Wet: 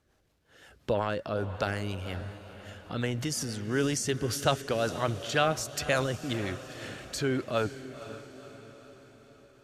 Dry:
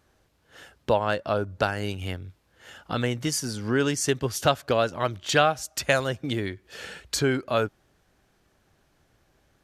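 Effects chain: rotary cabinet horn 5.5 Hz; transient shaper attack 0 dB, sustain +8 dB; echo that smears into a reverb 503 ms, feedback 54%, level -13 dB; trim -3.5 dB

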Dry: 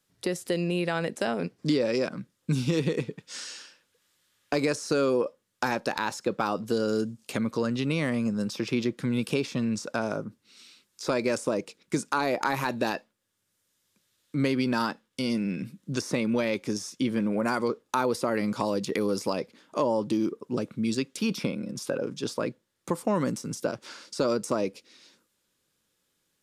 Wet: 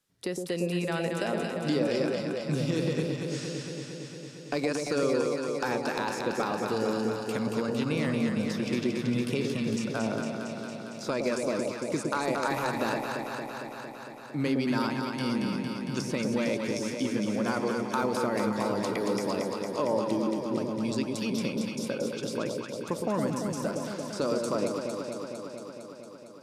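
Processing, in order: echo whose repeats swap between lows and highs 114 ms, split 830 Hz, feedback 87%, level -3 dB; trim -4 dB

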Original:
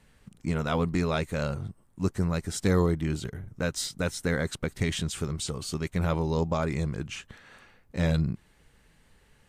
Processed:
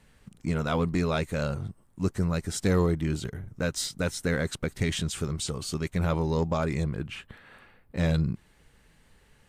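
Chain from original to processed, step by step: 6.84–7.98 s: peaking EQ 6.3 kHz -14 dB 0.77 oct; in parallel at -8 dB: hard clipper -23.5 dBFS, distortion -11 dB; on the sum: trim -2 dB

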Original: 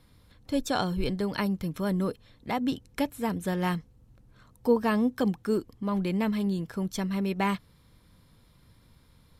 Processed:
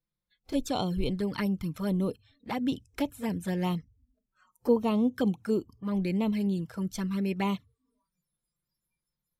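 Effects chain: touch-sensitive flanger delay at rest 6.1 ms, full sweep at -23.5 dBFS; spectral noise reduction 27 dB

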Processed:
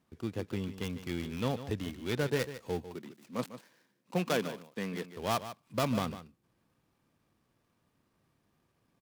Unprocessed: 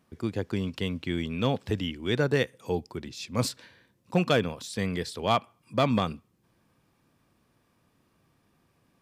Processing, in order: dead-time distortion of 0.15 ms; 2.88–5.08 s: high-pass 160 Hz 24 dB/octave; delay 149 ms -12.5 dB; trim -6 dB

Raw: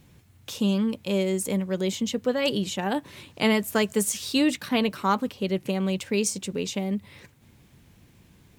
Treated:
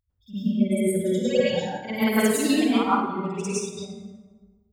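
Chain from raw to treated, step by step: expander on every frequency bin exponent 3; on a send: reverse echo 94 ms -11 dB; on the sum: time stretch by phase-locked vocoder 0.55×; in parallel at -0.5 dB: peak limiter -25.5 dBFS, peak gain reduction 10 dB; on the sum: plate-style reverb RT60 1.5 s, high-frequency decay 0.55×, pre-delay 90 ms, DRR -10 dB; upward expansion 1.5:1, over -28 dBFS; trim -3.5 dB

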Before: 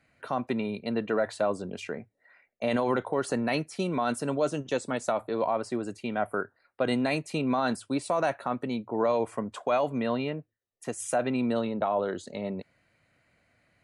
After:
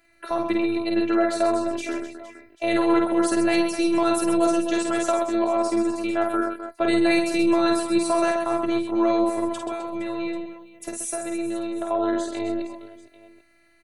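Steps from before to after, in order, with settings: treble shelf 9 kHz +7.5 dB; 9.52–11.91 s: compression, threshold -33 dBFS, peak gain reduction 11.5 dB; robot voice 336 Hz; reverse bouncing-ball echo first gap 50 ms, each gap 1.6×, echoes 5; trim +6.5 dB

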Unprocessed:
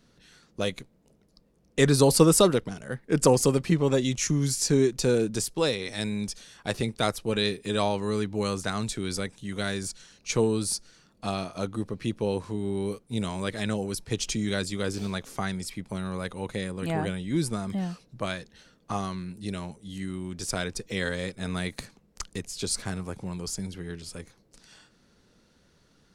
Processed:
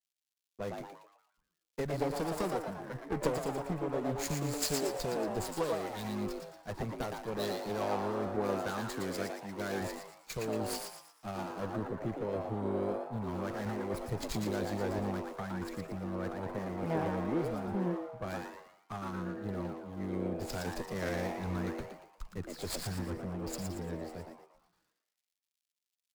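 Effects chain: median filter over 15 samples; 8.35–9.81 s: bass shelf 120 Hz -12 dB; compression 10:1, threshold -28 dBFS, peak gain reduction 15.5 dB; one-sided clip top -36 dBFS; gate with hold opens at -50 dBFS; treble shelf 8.2 kHz +3 dB; frequency-shifting echo 116 ms, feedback 59%, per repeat +150 Hz, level -3.5 dB; crackle 190 per s -49 dBFS; three bands expanded up and down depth 100%; trim -1 dB

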